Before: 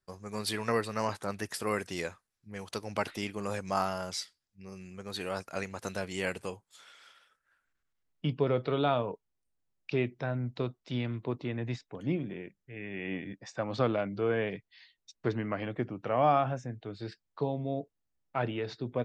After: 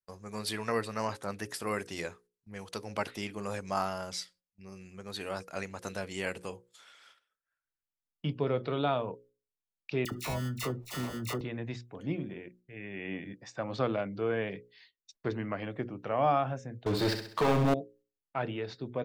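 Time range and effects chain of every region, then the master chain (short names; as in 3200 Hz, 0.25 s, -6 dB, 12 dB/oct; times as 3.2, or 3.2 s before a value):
10.05–11.41 sample-rate reducer 1600 Hz + dispersion lows, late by 65 ms, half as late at 1300 Hz + fast leveller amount 50%
16.86–17.74 low shelf 170 Hz -5.5 dB + sample leveller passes 5 + flutter echo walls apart 11.2 m, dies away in 0.57 s
whole clip: gate -58 dBFS, range -14 dB; notches 60/120/180/240/300/360/420/480/540 Hz; gain -1.5 dB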